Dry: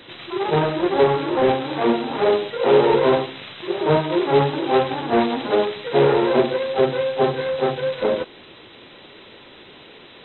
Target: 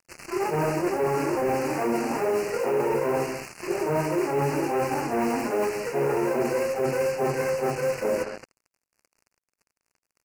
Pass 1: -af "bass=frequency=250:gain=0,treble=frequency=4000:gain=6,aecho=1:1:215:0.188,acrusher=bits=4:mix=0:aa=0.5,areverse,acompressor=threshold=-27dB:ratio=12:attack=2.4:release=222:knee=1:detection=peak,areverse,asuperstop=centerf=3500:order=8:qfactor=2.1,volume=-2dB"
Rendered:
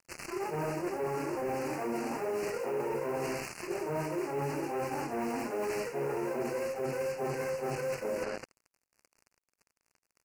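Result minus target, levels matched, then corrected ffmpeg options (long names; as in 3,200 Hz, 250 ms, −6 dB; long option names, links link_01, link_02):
downward compressor: peak gain reduction +9 dB
-af "bass=frequency=250:gain=0,treble=frequency=4000:gain=6,aecho=1:1:215:0.188,acrusher=bits=4:mix=0:aa=0.5,areverse,acompressor=threshold=-17dB:ratio=12:attack=2.4:release=222:knee=1:detection=peak,areverse,asuperstop=centerf=3500:order=8:qfactor=2.1,volume=-2dB"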